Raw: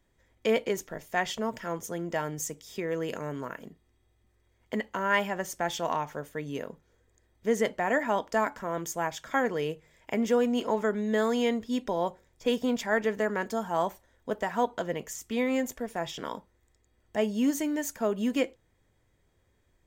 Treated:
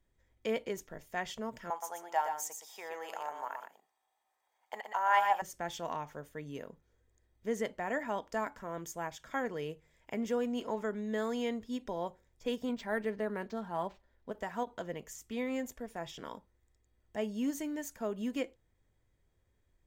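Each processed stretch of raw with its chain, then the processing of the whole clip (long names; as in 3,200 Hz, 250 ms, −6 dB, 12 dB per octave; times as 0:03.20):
0:01.70–0:05.42: high-pass with resonance 820 Hz, resonance Q 7.6 + high-shelf EQ 6,500 Hz +6 dB + single-tap delay 120 ms −6.5 dB
0:12.69–0:14.32: high-shelf EQ 6,000 Hz −4.5 dB + comb filter 5 ms, depth 32% + linearly interpolated sample-rate reduction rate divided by 4×
whole clip: low-shelf EQ 84 Hz +7.5 dB; every ending faded ahead of time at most 470 dB per second; level −8.5 dB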